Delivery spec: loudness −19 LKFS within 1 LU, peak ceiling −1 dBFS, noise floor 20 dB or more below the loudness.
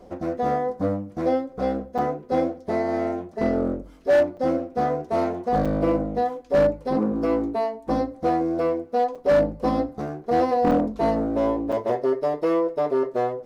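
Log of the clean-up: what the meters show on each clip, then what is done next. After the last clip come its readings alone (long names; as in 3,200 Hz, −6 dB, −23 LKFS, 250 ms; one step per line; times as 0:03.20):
share of clipped samples 0.7%; peaks flattened at −13.5 dBFS; number of dropouts 6; longest dropout 5.7 ms; integrated loudness −24.0 LKFS; sample peak −13.5 dBFS; target loudness −19.0 LKFS
→ clipped peaks rebuilt −13.5 dBFS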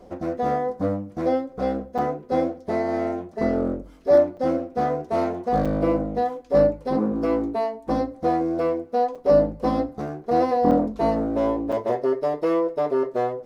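share of clipped samples 0.0%; number of dropouts 6; longest dropout 5.7 ms
→ repair the gap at 0:01.98/0:04.37/0:05.65/0:09.15/0:10.71/0:11.72, 5.7 ms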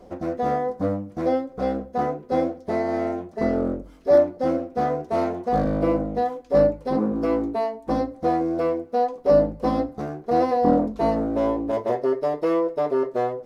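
number of dropouts 0; integrated loudness −23.5 LKFS; sample peak −6.0 dBFS; target loudness −19.0 LKFS
→ level +4.5 dB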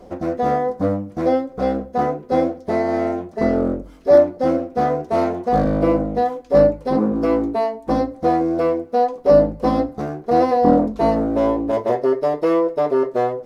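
integrated loudness −19.0 LKFS; sample peak −1.5 dBFS; background noise floor −43 dBFS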